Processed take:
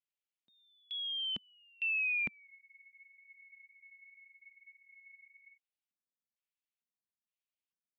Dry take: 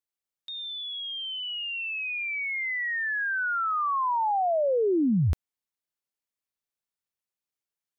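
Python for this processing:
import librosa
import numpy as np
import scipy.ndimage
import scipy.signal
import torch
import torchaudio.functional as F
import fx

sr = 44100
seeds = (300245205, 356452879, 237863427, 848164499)

y = fx.filter_lfo_bandpass(x, sr, shape='square', hz=1.1, low_hz=210.0, high_hz=2700.0, q=2.6)
y = fx.spec_freeze(y, sr, seeds[0], at_s=2.49, hold_s=3.08)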